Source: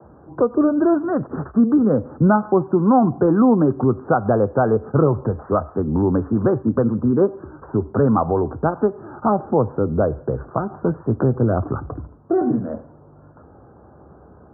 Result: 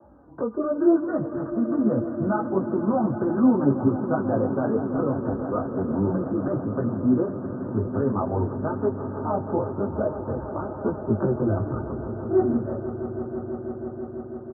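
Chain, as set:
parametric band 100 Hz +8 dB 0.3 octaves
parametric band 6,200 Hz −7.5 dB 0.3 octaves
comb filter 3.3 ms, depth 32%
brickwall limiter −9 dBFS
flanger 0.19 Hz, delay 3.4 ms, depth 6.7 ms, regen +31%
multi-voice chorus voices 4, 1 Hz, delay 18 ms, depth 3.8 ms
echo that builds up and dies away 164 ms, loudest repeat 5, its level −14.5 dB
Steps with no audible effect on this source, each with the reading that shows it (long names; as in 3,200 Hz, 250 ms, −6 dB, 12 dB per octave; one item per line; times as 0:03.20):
parametric band 6,200 Hz: nothing at its input above 1,500 Hz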